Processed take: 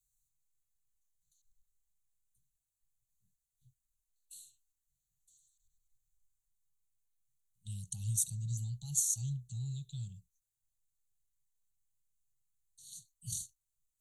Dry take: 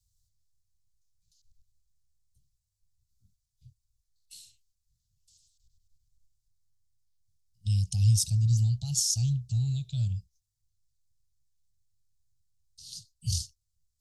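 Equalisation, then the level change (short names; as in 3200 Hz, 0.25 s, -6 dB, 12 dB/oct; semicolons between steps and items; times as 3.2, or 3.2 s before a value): Butterworth band-stop 5100 Hz, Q 2.6; high shelf 4200 Hz +10 dB; fixed phaser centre 410 Hz, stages 8; -8.5 dB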